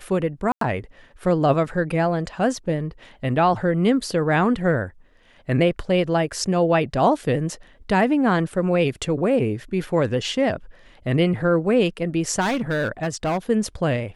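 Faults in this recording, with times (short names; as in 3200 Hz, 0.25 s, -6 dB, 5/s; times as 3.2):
0.52–0.61 gap 93 ms
12.4–13.38 clipped -19 dBFS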